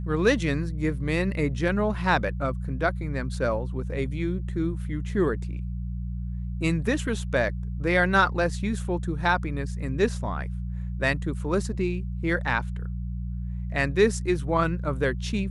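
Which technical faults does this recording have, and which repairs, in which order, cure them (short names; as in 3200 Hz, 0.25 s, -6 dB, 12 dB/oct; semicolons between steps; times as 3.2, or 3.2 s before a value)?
hum 60 Hz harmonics 3 -31 dBFS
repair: de-hum 60 Hz, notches 3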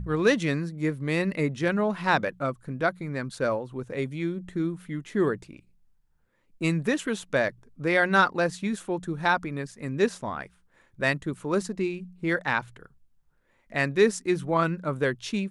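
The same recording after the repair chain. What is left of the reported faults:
none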